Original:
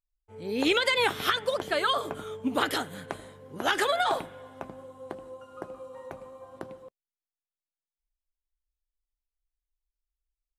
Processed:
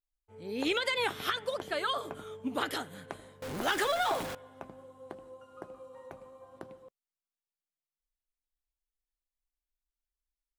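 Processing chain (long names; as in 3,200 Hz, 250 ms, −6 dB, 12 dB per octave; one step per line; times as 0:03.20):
0:03.42–0:04.35: converter with a step at zero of −28 dBFS
level −6 dB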